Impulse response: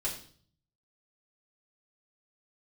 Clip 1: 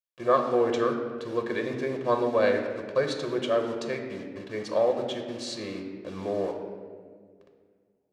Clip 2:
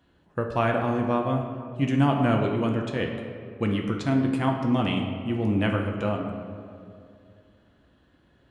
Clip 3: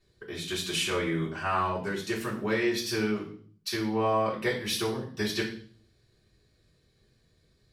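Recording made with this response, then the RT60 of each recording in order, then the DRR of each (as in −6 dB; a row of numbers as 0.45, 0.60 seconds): 3; 1.8, 2.5, 0.50 seconds; 3.5, 1.5, −6.5 decibels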